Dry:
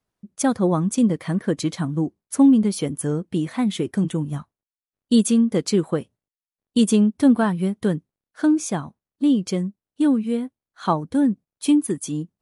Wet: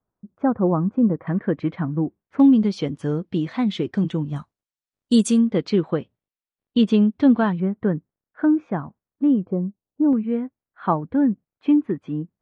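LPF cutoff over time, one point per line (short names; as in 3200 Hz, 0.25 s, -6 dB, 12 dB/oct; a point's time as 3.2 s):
LPF 24 dB/oct
1400 Hz
from 1.27 s 2300 Hz
from 2.4 s 4900 Hz
from 4.36 s 8800 Hz
from 5.47 s 3800 Hz
from 7.6 s 1900 Hz
from 9.45 s 1000 Hz
from 10.13 s 2200 Hz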